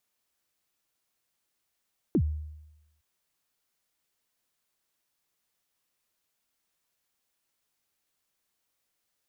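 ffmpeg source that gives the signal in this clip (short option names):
-f lavfi -i "aevalsrc='0.119*pow(10,-3*t/0.96)*sin(2*PI*(390*0.07/log(76/390)*(exp(log(76/390)*min(t,0.07)/0.07)-1)+76*max(t-0.07,0)))':d=0.86:s=44100"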